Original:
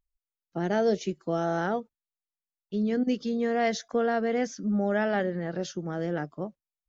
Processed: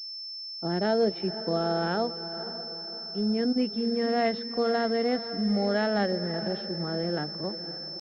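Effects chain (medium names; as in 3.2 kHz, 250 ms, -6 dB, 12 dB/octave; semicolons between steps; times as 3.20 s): echo that smears into a reverb 461 ms, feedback 48%, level -12 dB; tempo 0.86×; class-D stage that switches slowly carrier 5.3 kHz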